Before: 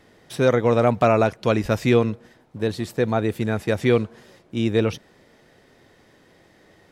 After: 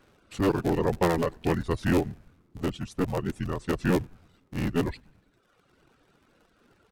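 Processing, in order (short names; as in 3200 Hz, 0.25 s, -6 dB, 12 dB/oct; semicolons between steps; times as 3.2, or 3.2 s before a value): cycle switcher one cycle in 3, inverted; notch 850 Hz, Q 24; on a send: frequency-shifting echo 98 ms, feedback 63%, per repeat -120 Hz, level -18 dB; on the sum: reverb removal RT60 1 s; pitch shift -5 st; gain -5.5 dB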